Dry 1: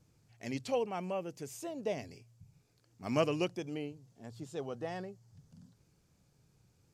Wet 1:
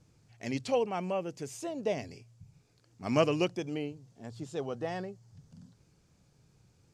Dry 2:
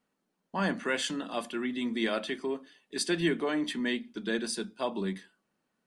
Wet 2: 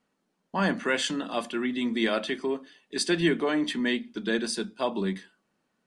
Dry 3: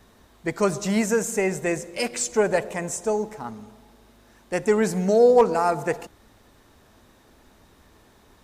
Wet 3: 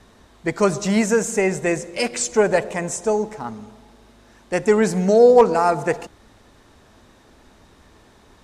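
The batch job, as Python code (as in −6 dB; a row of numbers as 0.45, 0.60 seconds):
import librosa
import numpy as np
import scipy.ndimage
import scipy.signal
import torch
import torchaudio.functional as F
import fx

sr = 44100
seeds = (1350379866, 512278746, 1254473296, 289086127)

y = scipy.signal.sosfilt(scipy.signal.butter(2, 9300.0, 'lowpass', fs=sr, output='sos'), x)
y = F.gain(torch.from_numpy(y), 4.0).numpy()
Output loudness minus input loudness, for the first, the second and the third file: +4.0, +4.0, +4.0 LU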